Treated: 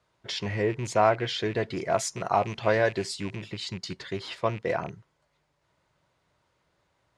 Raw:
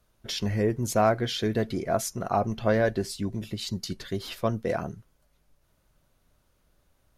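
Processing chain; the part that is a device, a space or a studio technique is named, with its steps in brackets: car door speaker with a rattle (rattling part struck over -34 dBFS, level -33 dBFS; speaker cabinet 110–7500 Hz, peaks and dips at 230 Hz -10 dB, 950 Hz +6 dB, 2000 Hz +5 dB, 6000 Hz -5 dB); 1.77–3.36 high shelf 5000 Hz +9.5 dB

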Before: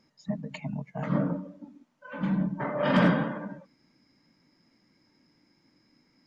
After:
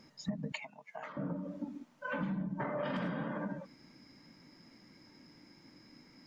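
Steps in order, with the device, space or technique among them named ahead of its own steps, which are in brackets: serial compression, leveller first (compressor 2.5:1, threshold -29 dBFS, peak gain reduction 8 dB; compressor 8:1, threshold -41 dBFS, peak gain reduction 16 dB); 0.52–1.17 HPF 820 Hz 12 dB/oct; gain +7 dB

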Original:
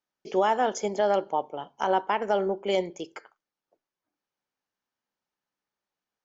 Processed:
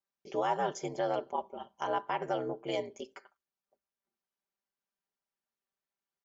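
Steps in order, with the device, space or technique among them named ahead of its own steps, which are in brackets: ring-modulated robot voice (ring modulator 60 Hz; comb 5.1 ms, depth 70%); gain -6 dB

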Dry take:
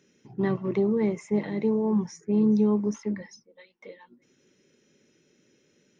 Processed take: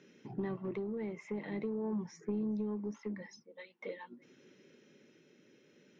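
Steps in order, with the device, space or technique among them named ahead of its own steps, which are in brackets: AM radio (BPF 140–3900 Hz; compressor 6:1, threshold -37 dBFS, peak gain reduction 17 dB; soft clip -30.5 dBFS, distortion -22 dB; tremolo 0.46 Hz, depth 29%); 0.97–1.57 bell 2400 Hz +4 dB 1.6 oct; gain +4 dB

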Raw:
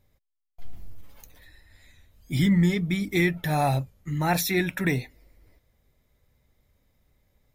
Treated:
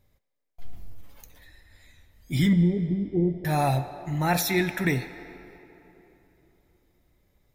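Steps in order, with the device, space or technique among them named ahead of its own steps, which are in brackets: 2.53–3.45 steep low-pass 750 Hz 36 dB/oct; filtered reverb send (on a send: HPF 330 Hz 12 dB/oct + LPF 8100 Hz 12 dB/oct + reverb RT60 3.3 s, pre-delay 14 ms, DRR 10 dB)

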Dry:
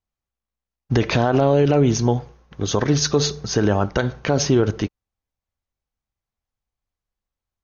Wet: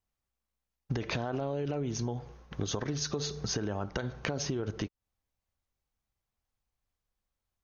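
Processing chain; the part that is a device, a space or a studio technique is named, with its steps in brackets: serial compression, leveller first (compressor 2.5:1, threshold -19 dBFS, peak gain reduction 5.5 dB; compressor 6:1, threshold -31 dBFS, peak gain reduction 13.5 dB)

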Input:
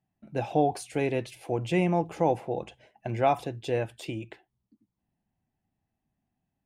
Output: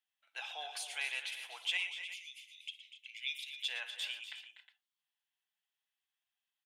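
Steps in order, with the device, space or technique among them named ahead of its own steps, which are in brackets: 1.77–3.53 Chebyshev band-stop 240–2200 Hz, order 5; headphones lying on a table (HPF 1200 Hz 24 dB/oct; bell 3300 Hz +12 dB 0.49 oct); tapped delay 60/116/245/273/275/362 ms -17/-13/-12/-19/-17/-15.5 dB; gain -2.5 dB

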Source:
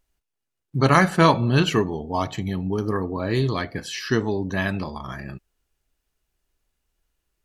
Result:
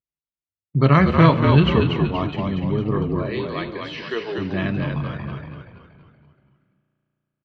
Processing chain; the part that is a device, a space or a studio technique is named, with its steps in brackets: gate with hold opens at -34 dBFS; 3.22–4.38 HPF 410 Hz 24 dB/oct; frequency-shifting delay pedal into a guitar cabinet (frequency-shifting echo 0.237 s, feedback 48%, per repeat -54 Hz, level -4 dB; speaker cabinet 77–3400 Hz, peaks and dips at 150 Hz +8 dB, 810 Hz -9 dB, 1600 Hz -7 dB); spring tank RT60 3.1 s, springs 34 ms, chirp 60 ms, DRR 18.5 dB; gain +1 dB

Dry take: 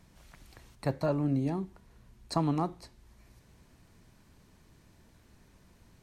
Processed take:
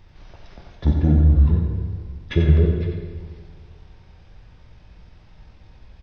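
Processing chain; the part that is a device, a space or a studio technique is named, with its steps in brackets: monster voice (pitch shift -11.5 st; formant shift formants -4 st; low shelf 150 Hz +6 dB; echo 90 ms -7 dB; reverb RT60 1.8 s, pre-delay 4 ms, DRR 2 dB); gain +7.5 dB

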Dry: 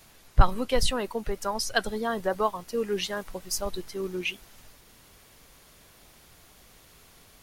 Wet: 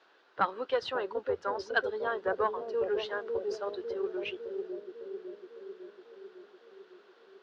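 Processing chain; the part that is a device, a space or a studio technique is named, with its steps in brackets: Chebyshev high-pass 370 Hz, order 3; analogue delay pedal into a guitar amplifier (analogue delay 0.552 s, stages 2048, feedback 64%, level -3 dB; tube stage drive 13 dB, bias 0.4; speaker cabinet 81–4300 Hz, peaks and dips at 86 Hz +9 dB, 230 Hz -3 dB, 660 Hz -3 dB, 1500 Hz +7 dB, 2200 Hz -7 dB); high shelf 2400 Hz -9 dB

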